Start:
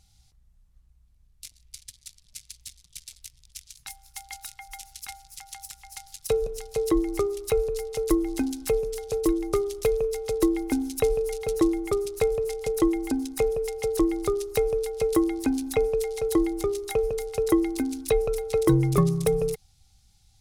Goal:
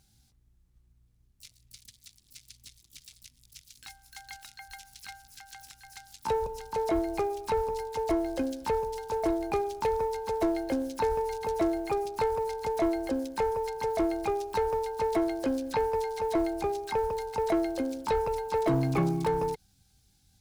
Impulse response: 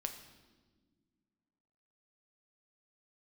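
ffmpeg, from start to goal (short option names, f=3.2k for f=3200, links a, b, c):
-filter_complex "[0:a]highpass=f=47:p=1,asplit=2[a][b];[b]asetrate=88200,aresample=44100,atempo=0.5,volume=-4dB[c];[a][c]amix=inputs=2:normalize=0,asoftclip=type=tanh:threshold=-15.5dB,acrusher=bits=8:mode=log:mix=0:aa=0.000001,acrossover=split=6100[d][e];[e]acompressor=threshold=-47dB:ratio=4:attack=1:release=60[f];[d][f]amix=inputs=2:normalize=0,volume=-4dB"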